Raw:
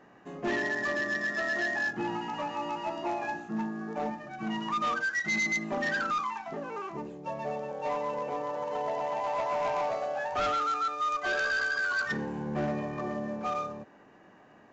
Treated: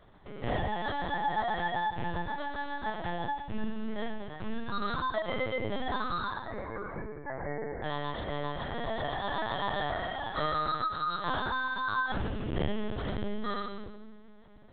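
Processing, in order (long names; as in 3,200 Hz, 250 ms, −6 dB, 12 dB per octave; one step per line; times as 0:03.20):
low-shelf EQ 100 Hz +6 dB
decimation without filtering 17×
0:06.38–0:07.84: linear-phase brick-wall low-pass 2,400 Hz
echo with a time of its own for lows and highs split 490 Hz, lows 273 ms, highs 108 ms, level −10.5 dB
rectangular room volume 830 cubic metres, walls furnished, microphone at 1.4 metres
linear-prediction vocoder at 8 kHz pitch kept
level −3 dB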